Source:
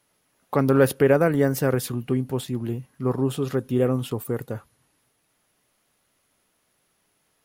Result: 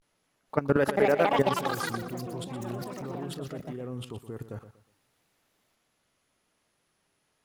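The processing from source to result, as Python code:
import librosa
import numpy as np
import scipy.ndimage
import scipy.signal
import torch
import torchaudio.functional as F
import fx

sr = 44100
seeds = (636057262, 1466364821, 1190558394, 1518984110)

y = fx.level_steps(x, sr, step_db=18)
y = fx.highpass(y, sr, hz=400.0, slope=6, at=(0.77, 1.41))
y = fx.vibrato(y, sr, rate_hz=0.4, depth_cents=80.0)
y = scipy.signal.sosfilt(scipy.signal.butter(2, 9300.0, 'lowpass', fs=sr, output='sos'), y)
y = fx.echo_pitch(y, sr, ms=483, semitones=6, count=3, db_per_echo=-3.0)
y = fx.echo_feedback(y, sr, ms=120, feedback_pct=28, wet_db=-12.5)
y = y * librosa.db_to_amplitude(-1.5)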